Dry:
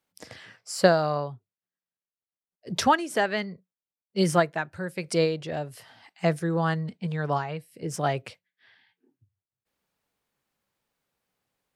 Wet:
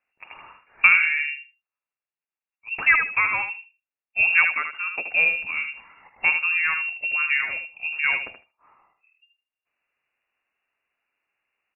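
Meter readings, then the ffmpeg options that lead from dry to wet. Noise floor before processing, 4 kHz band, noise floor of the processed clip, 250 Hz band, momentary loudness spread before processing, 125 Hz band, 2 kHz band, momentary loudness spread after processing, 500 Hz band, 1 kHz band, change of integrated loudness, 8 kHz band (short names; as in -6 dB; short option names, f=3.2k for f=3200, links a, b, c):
under -85 dBFS, n/a, under -85 dBFS, under -20 dB, 13 LU, under -20 dB, +14.5 dB, 13 LU, -19.5 dB, -4.0 dB, +6.5 dB, under -40 dB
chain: -filter_complex "[0:a]asplit=2[a][b];[b]adelay=77,lowpass=f=2k:p=1,volume=-5.5dB,asplit=2[c][d];[d]adelay=77,lowpass=f=2k:p=1,volume=0.19,asplit=2[e][f];[f]adelay=77,lowpass=f=2k:p=1,volume=0.19[g];[a][c][e][g]amix=inputs=4:normalize=0,lowpass=f=2.5k:t=q:w=0.5098,lowpass=f=2.5k:t=q:w=0.6013,lowpass=f=2.5k:t=q:w=0.9,lowpass=f=2.5k:t=q:w=2.563,afreqshift=-2900,volume=2.5dB"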